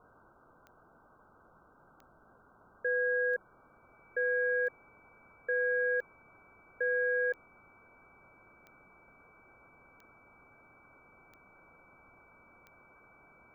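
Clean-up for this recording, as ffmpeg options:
-af "adeclick=t=4,bandreject=f=2300:w=30,afwtdn=0.0028"

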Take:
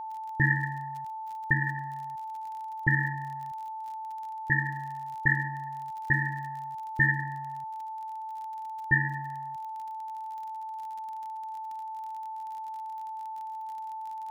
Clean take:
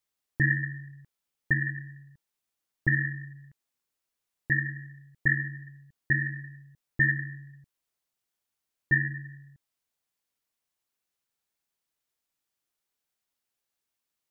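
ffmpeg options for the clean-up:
-af "adeclick=t=4,bandreject=f=880:w=30,agate=range=0.0891:threshold=0.0316"

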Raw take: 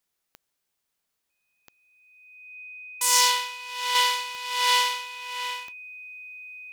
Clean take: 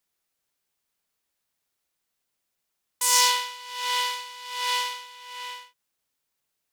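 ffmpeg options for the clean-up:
-af "adeclick=t=4,bandreject=f=2500:w=30,asetnsamples=n=441:p=0,asendcmd='3.95 volume volume -5dB',volume=1"

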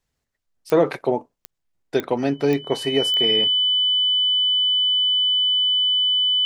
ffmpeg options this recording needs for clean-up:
-af "adeclick=t=4,bandreject=f=3000:w=30"

